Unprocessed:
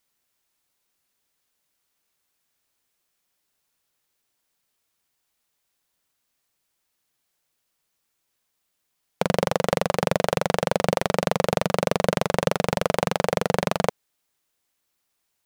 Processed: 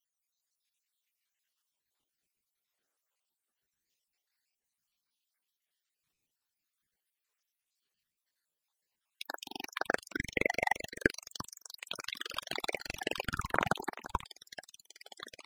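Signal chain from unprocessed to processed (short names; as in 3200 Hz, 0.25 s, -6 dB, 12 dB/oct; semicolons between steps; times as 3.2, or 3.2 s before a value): random spectral dropouts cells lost 83%; LFO high-pass saw down 0.27 Hz 550–4900 Hz; on a send: echo 0.346 s -15 dB; on the sum: echoes that change speed 0.219 s, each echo -4 st, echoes 3, each echo -6 dB; ring modulator with a swept carrier 820 Hz, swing 70%, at 0.47 Hz; gain -2 dB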